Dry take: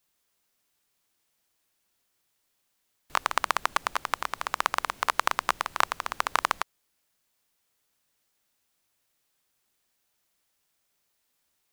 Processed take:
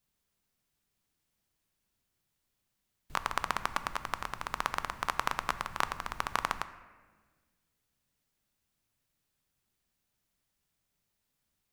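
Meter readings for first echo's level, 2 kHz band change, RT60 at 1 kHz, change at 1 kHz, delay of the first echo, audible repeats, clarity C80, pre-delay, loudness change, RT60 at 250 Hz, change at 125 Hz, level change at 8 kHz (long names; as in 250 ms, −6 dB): no echo audible, −6.0 dB, 1.3 s, −6.0 dB, no echo audible, no echo audible, 15.0 dB, 3 ms, −6.0 dB, 2.0 s, +5.5 dB, −7.5 dB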